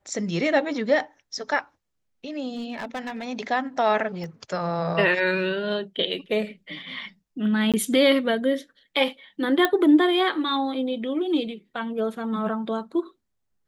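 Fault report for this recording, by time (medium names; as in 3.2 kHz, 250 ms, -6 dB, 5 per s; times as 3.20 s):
2.49–3.25 s: clipped -27 dBFS
4.24 s: pop -25 dBFS
7.72–7.74 s: dropout 17 ms
9.65 s: pop -7 dBFS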